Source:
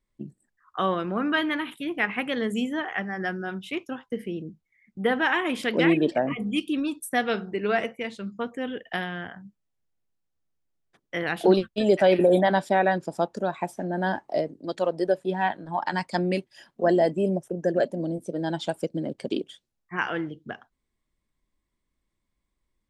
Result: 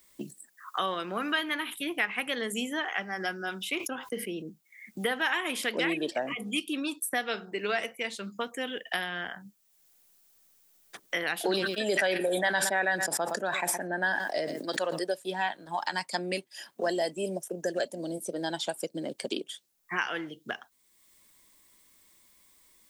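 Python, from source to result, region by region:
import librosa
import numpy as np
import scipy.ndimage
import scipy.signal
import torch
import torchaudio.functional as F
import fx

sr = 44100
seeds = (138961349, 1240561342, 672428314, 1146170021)

y = fx.chain(x, sr, fx.notch(hz=1800.0, q=12.0),
    fx.sustainer(db_per_s=140.0), at=(2.89, 4.42))
y = fx.chain(y, sr, fx.peak_eq(hz=1700.0, db=10.0, octaves=0.47),
    fx.echo_single(ms=117, db=-23.0),
    fx.sustainer(db_per_s=43.0), at=(11.44, 15.03))
y = fx.riaa(y, sr, side='recording')
y = fx.band_squash(y, sr, depth_pct=70)
y = y * librosa.db_to_amplitude(-5.0)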